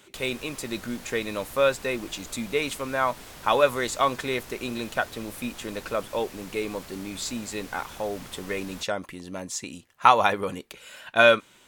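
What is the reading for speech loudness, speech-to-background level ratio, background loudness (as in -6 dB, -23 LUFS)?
-26.5 LUFS, 17.5 dB, -44.0 LUFS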